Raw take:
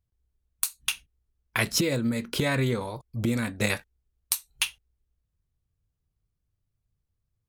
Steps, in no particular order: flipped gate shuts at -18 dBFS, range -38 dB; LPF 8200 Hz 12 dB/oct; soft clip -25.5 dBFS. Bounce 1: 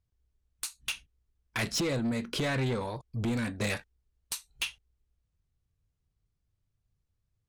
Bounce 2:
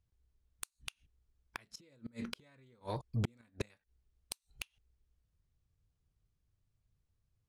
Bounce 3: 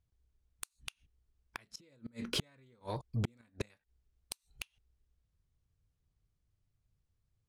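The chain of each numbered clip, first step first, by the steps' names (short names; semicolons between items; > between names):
LPF > soft clip > flipped gate; flipped gate > LPF > soft clip; LPF > flipped gate > soft clip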